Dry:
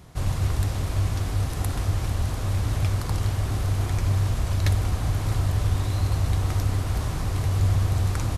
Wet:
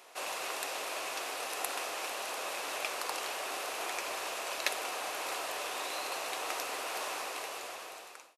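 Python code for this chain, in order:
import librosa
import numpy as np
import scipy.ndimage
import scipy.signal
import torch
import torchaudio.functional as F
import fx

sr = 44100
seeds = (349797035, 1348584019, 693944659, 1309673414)

y = fx.fade_out_tail(x, sr, length_s=1.25)
y = scipy.signal.sosfilt(scipy.signal.butter(4, 470.0, 'highpass', fs=sr, output='sos'), y)
y = fx.peak_eq(y, sr, hz=2600.0, db=8.5, octaves=0.23)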